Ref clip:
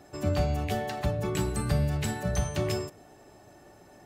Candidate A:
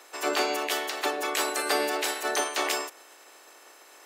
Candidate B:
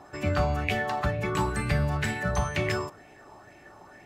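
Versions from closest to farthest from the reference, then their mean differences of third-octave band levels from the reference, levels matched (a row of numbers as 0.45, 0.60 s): B, A; 3.0, 12.5 dB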